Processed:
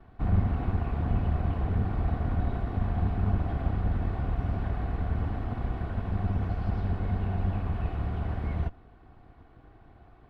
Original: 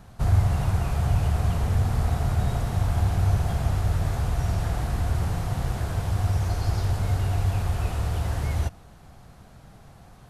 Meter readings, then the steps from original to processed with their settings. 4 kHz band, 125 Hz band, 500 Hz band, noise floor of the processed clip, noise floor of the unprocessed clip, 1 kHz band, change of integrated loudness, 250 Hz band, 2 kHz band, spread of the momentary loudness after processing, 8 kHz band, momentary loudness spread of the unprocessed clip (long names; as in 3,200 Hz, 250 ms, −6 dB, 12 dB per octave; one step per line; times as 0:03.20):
below −10 dB, −5.5 dB, −3.5 dB, −55 dBFS, −49 dBFS, −4.5 dB, −5.0 dB, +0.5 dB, −6.0 dB, 4 LU, below −30 dB, 4 LU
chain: lower of the sound and its delayed copy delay 2.7 ms
high-frequency loss of the air 460 metres
level −2.5 dB